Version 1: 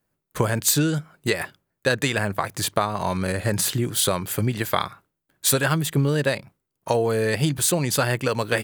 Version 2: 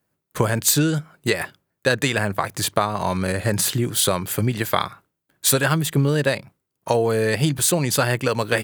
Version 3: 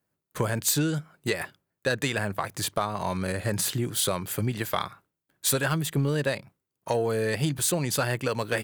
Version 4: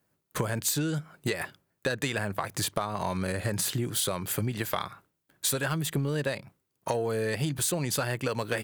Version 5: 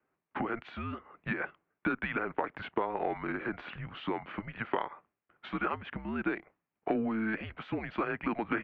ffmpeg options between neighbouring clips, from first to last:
-af "highpass=56,volume=2dB"
-af "asoftclip=type=tanh:threshold=-6dB,volume=-6dB"
-af "acompressor=threshold=-34dB:ratio=3,volume=5.5dB"
-af "highpass=f=420:t=q:w=0.5412,highpass=f=420:t=q:w=1.307,lowpass=f=2.7k:t=q:w=0.5176,lowpass=f=2.7k:t=q:w=0.7071,lowpass=f=2.7k:t=q:w=1.932,afreqshift=-220"

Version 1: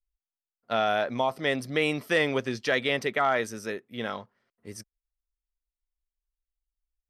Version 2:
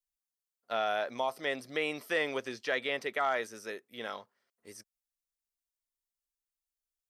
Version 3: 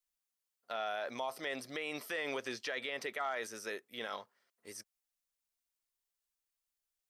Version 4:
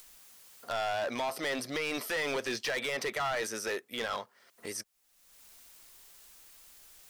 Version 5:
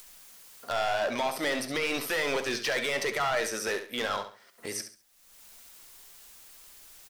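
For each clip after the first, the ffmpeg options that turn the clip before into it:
-filter_complex "[0:a]bass=f=250:g=-13,treble=f=4k:g=9,acrossover=split=3200[a][b];[b]acompressor=threshold=-43dB:ratio=4:attack=1:release=60[c];[a][c]amix=inputs=2:normalize=0,volume=-5.5dB"
-af "lowshelf=f=440:g=-5.5,alimiter=level_in=6dB:limit=-24dB:level=0:latency=1:release=48,volume=-6dB,volume=2.5dB"
-af "asoftclip=type=hard:threshold=-37.5dB,acompressor=mode=upward:threshold=-45dB:ratio=2.5,volume=9dB"
-af "flanger=delay=4.8:depth=7.9:regen=76:speed=0.9:shape=sinusoidal,aecho=1:1:69|138|207:0.316|0.0917|0.0266,volume=8dB"

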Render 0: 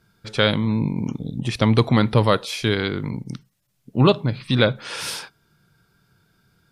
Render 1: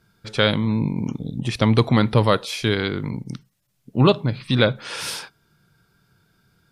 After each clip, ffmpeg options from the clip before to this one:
-af anull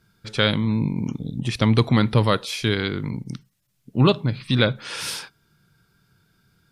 -af "equalizer=f=660:w=0.84:g=-4"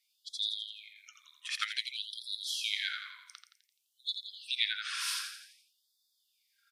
-af "aecho=1:1:85|170|255|340|425|510:0.447|0.228|0.116|0.0593|0.0302|0.0154,afftfilt=real='re*gte(b*sr/1024,970*pow(3400/970,0.5+0.5*sin(2*PI*0.54*pts/sr)))':imag='im*gte(b*sr/1024,970*pow(3400/970,0.5+0.5*sin(2*PI*0.54*pts/sr)))':win_size=1024:overlap=0.75,volume=-5.5dB"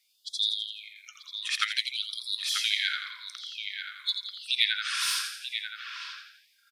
-filter_complex "[0:a]acrossover=split=4700[a][b];[a]aecho=1:1:938:0.422[c];[b]volume=34dB,asoftclip=hard,volume=-34dB[d];[c][d]amix=inputs=2:normalize=0,volume=6.5dB"

